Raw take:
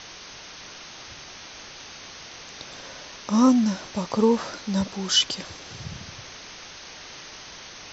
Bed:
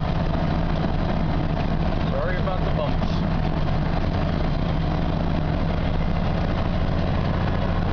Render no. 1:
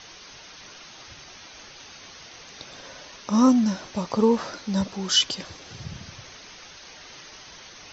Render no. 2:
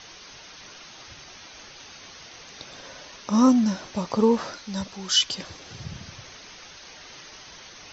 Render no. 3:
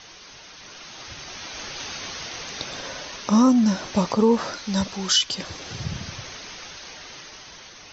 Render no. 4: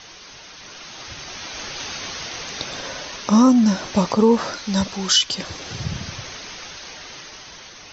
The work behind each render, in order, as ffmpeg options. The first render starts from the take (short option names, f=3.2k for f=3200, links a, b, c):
-af "afftdn=nr=6:nf=-43"
-filter_complex "[0:a]asettb=1/sr,asplit=3[a][b][c];[a]atrim=end=4.534[d];[b]atrim=start=4.53:end=5.31,asetpts=PTS-STARTPTS,afade=t=in:d=0.004:c=qsin,afade=t=out:st=0.776:d=0.004:c=qsin,equalizer=f=280:w=0.32:g=-7[e];[c]atrim=start=5.306[f];[d][e]acrossfade=d=0.004:c1=hsin:c2=qsin[g];[g][f]acrossfade=d=0.004:c1=qsin:c2=hsin"
-af "dynaudnorm=f=610:g=5:m=15dB,alimiter=limit=-9dB:level=0:latency=1:release=435"
-af "volume=3dB"